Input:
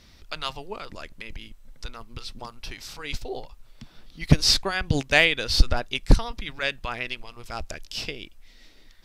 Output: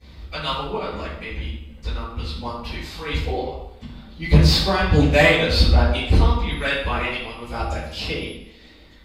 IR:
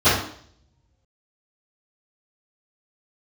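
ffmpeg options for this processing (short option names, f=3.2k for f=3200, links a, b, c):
-filter_complex "[0:a]asettb=1/sr,asplit=3[a][b][c];[a]atrim=end=6.514[d];[b]atrim=start=6.51:end=8.21,asetpts=PTS-STARTPTS,afade=t=in:d=0.004:c=qsin,afade=t=out:st=1.696:d=0.004:c=qsin,aeval=exprs='val(0)+0.01*sin(2*PI*11000*n/s)':c=same[e];[c]atrim=start=8.206[f];[d][e]acrossfade=d=0.004:c1=hsin:c2=qsin[g];[g][f]acrossfade=d=0.004:c1=qsin:c2=hsin,asoftclip=type=tanh:threshold=-15dB[h];[1:a]atrim=start_sample=2205,asetrate=32193,aresample=44100[i];[h][i]afir=irnorm=-1:irlink=0,volume=-16.5dB"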